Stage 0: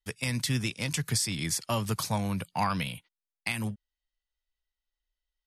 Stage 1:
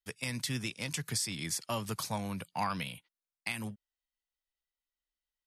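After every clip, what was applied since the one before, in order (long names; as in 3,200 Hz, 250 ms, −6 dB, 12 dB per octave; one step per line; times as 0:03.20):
low-shelf EQ 98 Hz −10 dB
level −4.5 dB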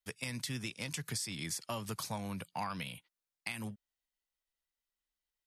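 downward compressor 2 to 1, threshold −38 dBFS, peak gain reduction 6 dB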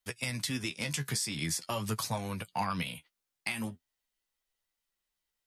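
flanger 0.45 Hz, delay 7.4 ms, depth 7.8 ms, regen +35%
level +9 dB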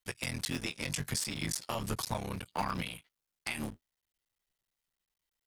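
sub-harmonics by changed cycles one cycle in 3, muted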